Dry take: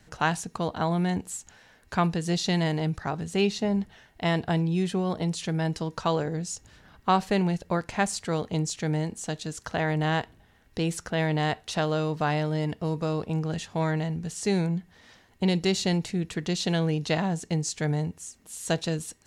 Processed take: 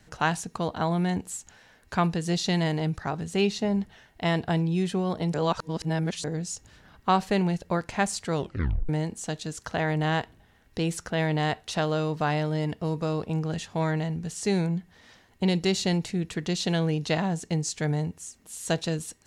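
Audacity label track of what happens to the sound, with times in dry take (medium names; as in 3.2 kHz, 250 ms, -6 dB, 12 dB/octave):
5.340000	6.240000	reverse
8.350000	8.350000	tape stop 0.54 s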